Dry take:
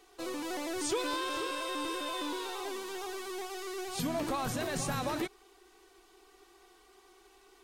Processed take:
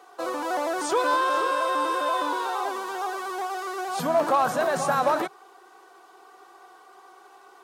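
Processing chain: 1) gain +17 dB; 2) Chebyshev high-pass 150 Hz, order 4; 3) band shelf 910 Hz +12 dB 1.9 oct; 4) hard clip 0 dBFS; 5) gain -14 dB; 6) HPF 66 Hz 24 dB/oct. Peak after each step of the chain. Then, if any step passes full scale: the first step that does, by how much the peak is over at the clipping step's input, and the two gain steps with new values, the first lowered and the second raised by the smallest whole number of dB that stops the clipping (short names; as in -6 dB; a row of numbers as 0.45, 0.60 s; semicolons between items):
-5.5, -4.0, +3.5, 0.0, -14.0, -12.5 dBFS; step 3, 3.5 dB; step 1 +13 dB, step 5 -10 dB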